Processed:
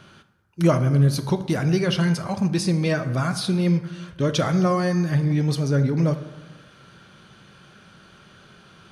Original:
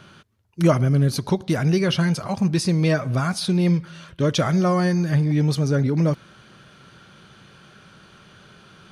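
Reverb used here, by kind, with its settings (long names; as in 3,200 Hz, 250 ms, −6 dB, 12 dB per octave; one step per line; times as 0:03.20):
dense smooth reverb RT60 1.2 s, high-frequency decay 0.5×, DRR 9.5 dB
level −1.5 dB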